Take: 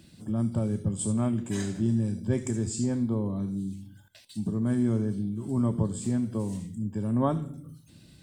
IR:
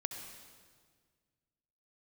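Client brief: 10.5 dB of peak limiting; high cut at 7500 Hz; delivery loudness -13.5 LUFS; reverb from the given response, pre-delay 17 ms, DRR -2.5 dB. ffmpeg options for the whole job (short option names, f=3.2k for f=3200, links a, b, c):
-filter_complex "[0:a]lowpass=7.5k,alimiter=level_in=1dB:limit=-24dB:level=0:latency=1,volume=-1dB,asplit=2[a][b];[1:a]atrim=start_sample=2205,adelay=17[c];[b][c]afir=irnorm=-1:irlink=0,volume=2.5dB[d];[a][d]amix=inputs=2:normalize=0,volume=15dB"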